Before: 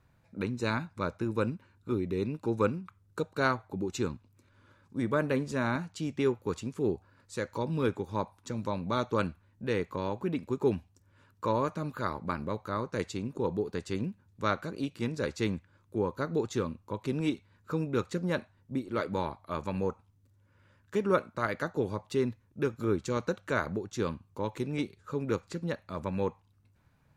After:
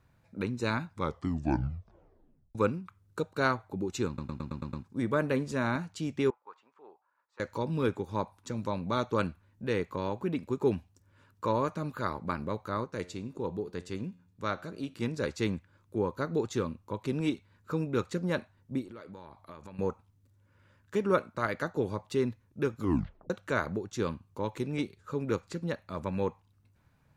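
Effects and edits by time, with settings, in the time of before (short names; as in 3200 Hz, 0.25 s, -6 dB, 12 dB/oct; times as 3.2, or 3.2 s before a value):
0.92 tape stop 1.63 s
4.07 stutter in place 0.11 s, 7 plays
6.3–7.4 ladder band-pass 1100 Hz, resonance 45%
12.84–14.94 resonator 89 Hz, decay 0.6 s, mix 40%
18.85–19.79 compressor 8:1, threshold -43 dBFS
22.8 tape stop 0.50 s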